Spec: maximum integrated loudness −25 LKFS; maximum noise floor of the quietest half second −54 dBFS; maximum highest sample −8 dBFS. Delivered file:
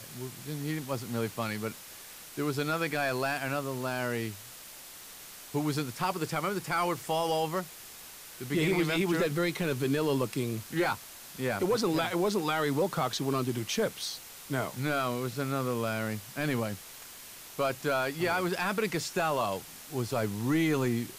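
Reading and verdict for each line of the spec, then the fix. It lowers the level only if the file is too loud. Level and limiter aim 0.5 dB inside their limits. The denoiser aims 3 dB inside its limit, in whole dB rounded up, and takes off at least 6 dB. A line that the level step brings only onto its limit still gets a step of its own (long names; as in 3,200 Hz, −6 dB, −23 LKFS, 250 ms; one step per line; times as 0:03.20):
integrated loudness −31.0 LKFS: in spec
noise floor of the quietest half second −48 dBFS: out of spec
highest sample −18.5 dBFS: in spec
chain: broadband denoise 9 dB, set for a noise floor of −48 dBFS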